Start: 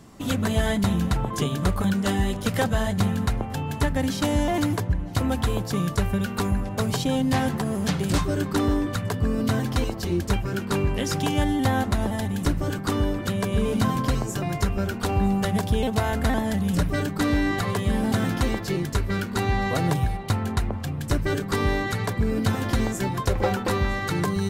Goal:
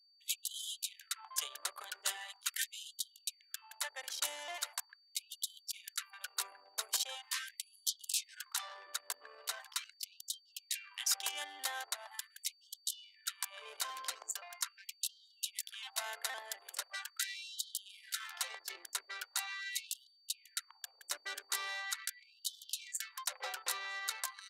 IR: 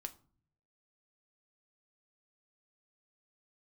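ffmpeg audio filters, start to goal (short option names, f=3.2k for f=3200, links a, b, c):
-filter_complex "[0:a]anlmdn=63.1,aderivative,acrossover=split=480|2300[a][b][c];[a]acrusher=bits=4:mix=0:aa=0.5[d];[d][b][c]amix=inputs=3:normalize=0,aeval=exprs='val(0)+0.000398*sin(2*PI*4600*n/s)':c=same,afftfilt=real='re*gte(b*sr/1024,240*pow(3000/240,0.5+0.5*sin(2*PI*0.41*pts/sr)))':imag='im*gte(b*sr/1024,240*pow(3000/240,0.5+0.5*sin(2*PI*0.41*pts/sr)))':win_size=1024:overlap=0.75,volume=2dB"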